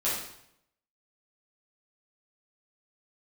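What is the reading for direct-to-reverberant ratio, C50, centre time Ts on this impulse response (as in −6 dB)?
−9.5 dB, 1.5 dB, 54 ms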